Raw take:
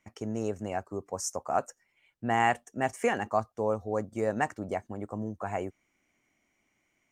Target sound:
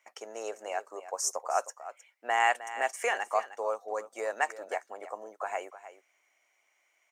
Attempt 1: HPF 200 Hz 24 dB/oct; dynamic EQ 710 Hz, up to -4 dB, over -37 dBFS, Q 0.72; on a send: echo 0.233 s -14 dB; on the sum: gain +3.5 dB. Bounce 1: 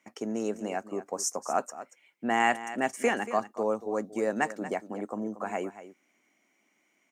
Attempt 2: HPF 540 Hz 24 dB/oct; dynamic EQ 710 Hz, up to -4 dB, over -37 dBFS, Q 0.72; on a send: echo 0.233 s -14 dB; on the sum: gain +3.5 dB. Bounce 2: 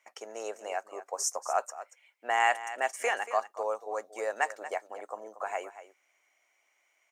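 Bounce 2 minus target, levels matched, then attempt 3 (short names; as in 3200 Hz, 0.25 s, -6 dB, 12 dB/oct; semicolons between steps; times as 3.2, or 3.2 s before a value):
echo 78 ms early
HPF 540 Hz 24 dB/oct; dynamic EQ 710 Hz, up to -4 dB, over -37 dBFS, Q 0.72; on a send: echo 0.311 s -14 dB; on the sum: gain +3.5 dB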